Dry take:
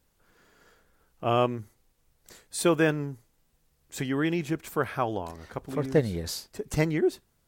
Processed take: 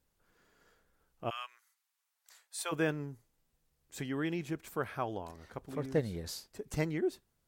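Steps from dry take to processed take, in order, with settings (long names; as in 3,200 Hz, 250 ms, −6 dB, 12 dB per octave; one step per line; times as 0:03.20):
0:01.29–0:02.71: high-pass filter 1,400 Hz → 650 Hz 24 dB per octave
level −8 dB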